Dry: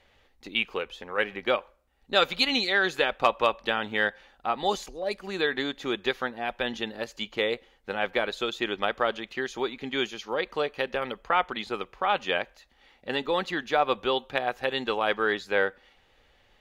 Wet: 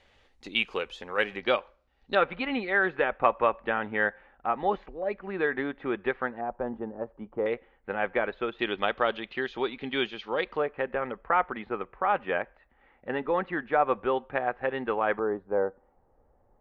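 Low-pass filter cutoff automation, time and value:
low-pass filter 24 dB per octave
10,000 Hz
from 0:01.40 5,400 Hz
from 0:02.15 2,100 Hz
from 0:06.41 1,100 Hz
from 0:07.46 2,200 Hz
from 0:08.59 3,700 Hz
from 0:10.57 2,000 Hz
from 0:15.19 1,000 Hz

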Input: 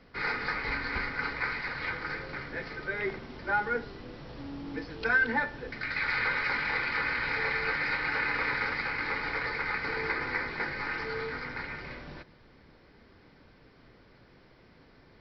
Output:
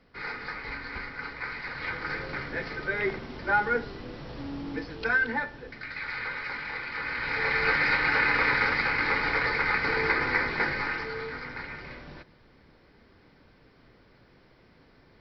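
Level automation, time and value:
0:01.36 −4.5 dB
0:02.24 +4 dB
0:04.60 +4 dB
0:05.94 −5 dB
0:06.89 −5 dB
0:07.68 +6 dB
0:10.72 +6 dB
0:11.13 −0.5 dB

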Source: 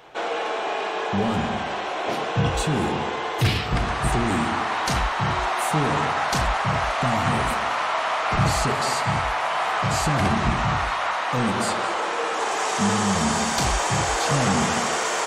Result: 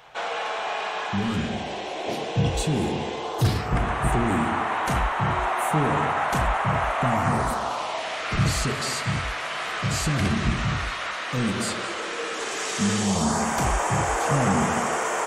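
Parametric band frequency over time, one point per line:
parametric band −13 dB 1 octave
0:00.98 330 Hz
0:01.61 1,300 Hz
0:03.13 1,300 Hz
0:03.83 4,800 Hz
0:07.07 4,800 Hz
0:08.30 850 Hz
0:12.95 850 Hz
0:13.48 4,200 Hz

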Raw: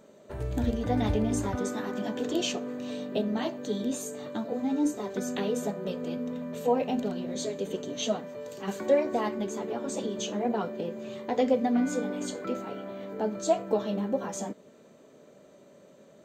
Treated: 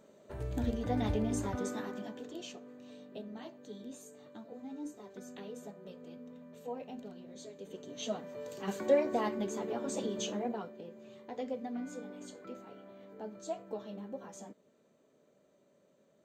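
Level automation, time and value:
0:01.80 −5.5 dB
0:02.32 −16 dB
0:07.53 −16 dB
0:08.41 −3.5 dB
0:10.29 −3.5 dB
0:10.75 −14 dB

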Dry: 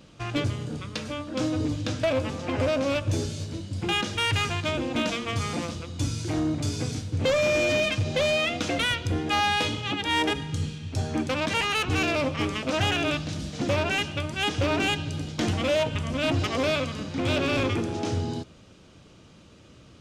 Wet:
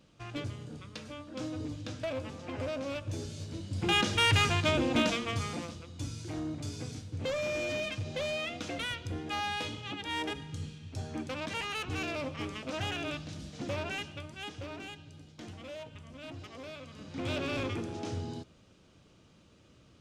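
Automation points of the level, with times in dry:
0:03.17 −11 dB
0:04.02 0 dB
0:04.95 0 dB
0:05.79 −10.5 dB
0:13.90 −10.5 dB
0:14.94 −20 dB
0:16.79 −20 dB
0:17.19 −9 dB

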